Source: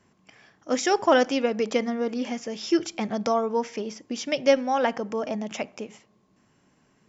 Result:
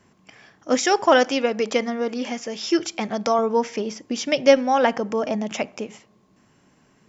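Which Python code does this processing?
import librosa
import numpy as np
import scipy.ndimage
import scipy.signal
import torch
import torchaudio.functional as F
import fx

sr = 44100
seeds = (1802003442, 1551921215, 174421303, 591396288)

y = fx.low_shelf(x, sr, hz=380.0, db=-6.0, at=(0.77, 3.39))
y = F.gain(torch.from_numpy(y), 5.0).numpy()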